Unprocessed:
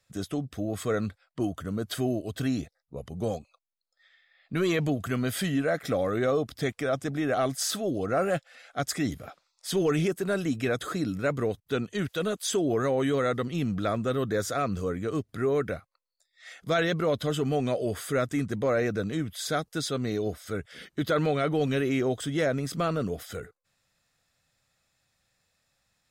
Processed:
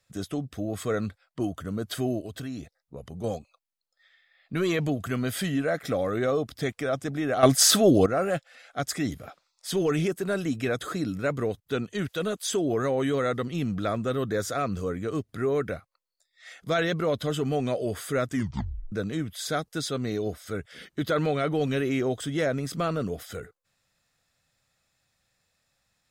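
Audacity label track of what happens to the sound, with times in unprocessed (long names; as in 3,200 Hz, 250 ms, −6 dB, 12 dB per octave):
2.260000	3.240000	downward compressor 2.5 to 1, threshold −35 dBFS
7.430000	8.060000	clip gain +11 dB
18.310000	18.310000	tape stop 0.61 s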